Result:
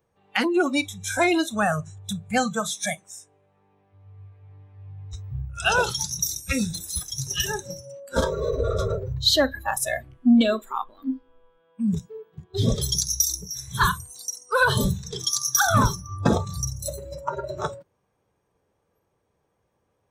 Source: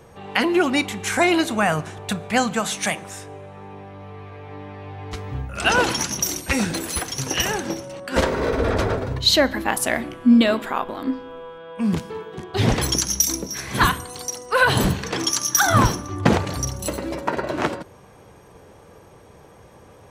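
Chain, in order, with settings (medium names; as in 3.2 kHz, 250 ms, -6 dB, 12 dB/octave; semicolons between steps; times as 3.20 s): spectral noise reduction 23 dB; saturation -4 dBFS, distortion -27 dB; trim -2 dB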